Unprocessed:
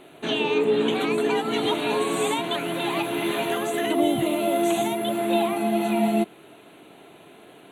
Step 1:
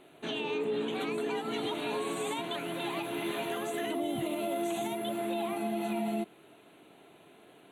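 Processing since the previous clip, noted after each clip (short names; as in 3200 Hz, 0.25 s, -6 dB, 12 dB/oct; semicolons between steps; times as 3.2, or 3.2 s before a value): limiter -16 dBFS, peak gain reduction 5.5 dB; gain -8.5 dB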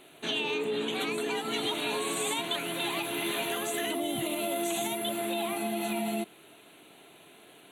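high shelf 2200 Hz +11 dB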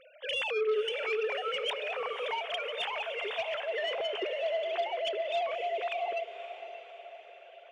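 sine-wave speech; soft clip -24 dBFS, distortion -15 dB; diffused feedback echo 0.559 s, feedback 51%, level -11 dB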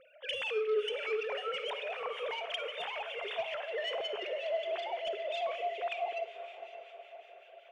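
harmonic tremolo 5.3 Hz, crossover 1600 Hz; reverb RT60 0.50 s, pre-delay 41 ms, DRR 12.5 dB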